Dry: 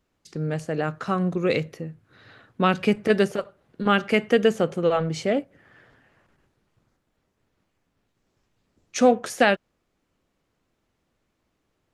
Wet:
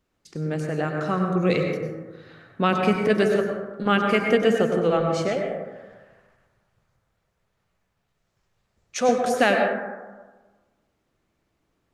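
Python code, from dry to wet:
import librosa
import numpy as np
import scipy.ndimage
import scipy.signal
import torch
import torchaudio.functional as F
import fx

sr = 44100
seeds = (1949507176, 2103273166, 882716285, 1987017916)

y = fx.peak_eq(x, sr, hz=290.0, db=-14.0, octaves=0.69, at=(5.28, 9.09))
y = fx.rev_plate(y, sr, seeds[0], rt60_s=1.3, hf_ratio=0.3, predelay_ms=85, drr_db=2.0)
y = y * 10.0 ** (-1.0 / 20.0)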